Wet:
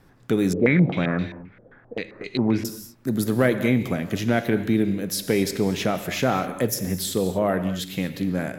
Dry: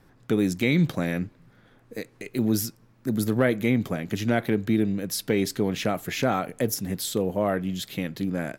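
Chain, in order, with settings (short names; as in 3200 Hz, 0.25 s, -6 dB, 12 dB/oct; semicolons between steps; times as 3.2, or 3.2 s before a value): non-linear reverb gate 0.27 s flat, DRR 9 dB; 0.53–2.65 stepped low-pass 7.6 Hz 530–4100 Hz; gain +2 dB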